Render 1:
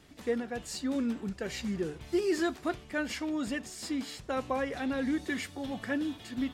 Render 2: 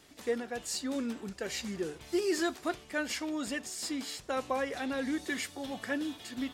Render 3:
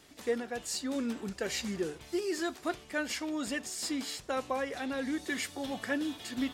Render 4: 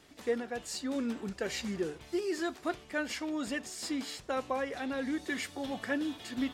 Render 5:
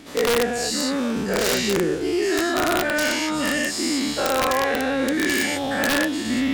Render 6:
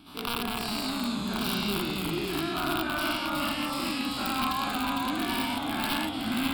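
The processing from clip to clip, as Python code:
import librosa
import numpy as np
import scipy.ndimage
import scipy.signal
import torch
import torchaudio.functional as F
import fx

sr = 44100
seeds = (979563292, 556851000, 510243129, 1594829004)

y1 = fx.bass_treble(x, sr, bass_db=-8, treble_db=5)
y2 = fx.rider(y1, sr, range_db=10, speed_s=0.5)
y3 = fx.high_shelf(y2, sr, hz=4900.0, db=-6.0)
y4 = fx.spec_dilate(y3, sr, span_ms=240)
y4 = (np.mod(10.0 ** (19.0 / 20.0) * y4 + 1.0, 2.0) - 1.0) / 10.0 ** (19.0 / 20.0)
y4 = y4 * 10.0 ** (6.5 / 20.0)
y5 = fx.fixed_phaser(y4, sr, hz=1900.0, stages=6)
y5 = fx.echo_pitch(y5, sr, ms=187, semitones=-1, count=3, db_per_echo=-3.0)
y5 = y5 * 10.0 ** (-5.5 / 20.0)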